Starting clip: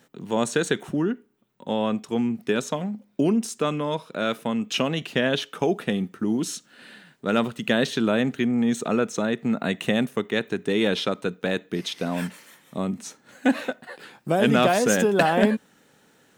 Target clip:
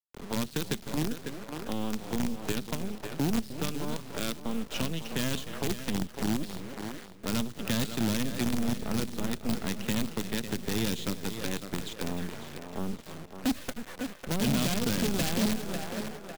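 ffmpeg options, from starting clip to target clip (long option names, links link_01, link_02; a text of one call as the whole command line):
ffmpeg -i in.wav -filter_complex "[0:a]asplit=2[link_01][link_02];[link_02]asplit=4[link_03][link_04][link_05][link_06];[link_03]adelay=305,afreqshift=-31,volume=-12.5dB[link_07];[link_04]adelay=610,afreqshift=-62,volume=-21.6dB[link_08];[link_05]adelay=915,afreqshift=-93,volume=-30.7dB[link_09];[link_06]adelay=1220,afreqshift=-124,volume=-39.9dB[link_10];[link_07][link_08][link_09][link_10]amix=inputs=4:normalize=0[link_11];[link_01][link_11]amix=inputs=2:normalize=0,aresample=11025,aresample=44100,highshelf=frequency=4100:gain=-9,acrusher=bits=4:dc=4:mix=0:aa=0.000001,asplit=2[link_12][link_13];[link_13]aecho=0:1:550|1100|1650:0.211|0.0613|0.0178[link_14];[link_12][link_14]amix=inputs=2:normalize=0,acrossover=split=290|3000[link_15][link_16][link_17];[link_16]acompressor=threshold=-35dB:ratio=6[link_18];[link_15][link_18][link_17]amix=inputs=3:normalize=0,volume=21dB,asoftclip=hard,volume=-21dB,volume=-1.5dB" out.wav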